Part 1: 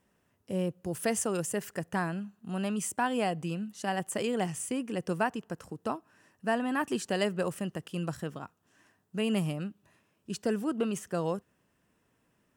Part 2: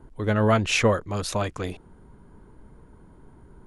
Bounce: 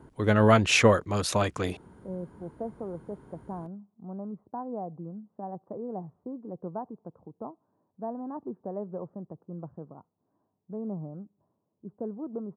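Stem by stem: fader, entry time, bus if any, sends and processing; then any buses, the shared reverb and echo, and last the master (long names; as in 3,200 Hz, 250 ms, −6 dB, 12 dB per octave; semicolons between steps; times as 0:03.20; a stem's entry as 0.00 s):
−5.5 dB, 1.55 s, no send, Butterworth low-pass 1,000 Hz 36 dB per octave
+1.0 dB, 0.00 s, no send, no processing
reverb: not used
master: high-pass filter 85 Hz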